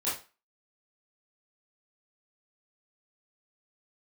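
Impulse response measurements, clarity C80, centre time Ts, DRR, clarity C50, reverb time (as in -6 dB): 11.5 dB, 39 ms, -10.5 dB, 5.0 dB, 0.30 s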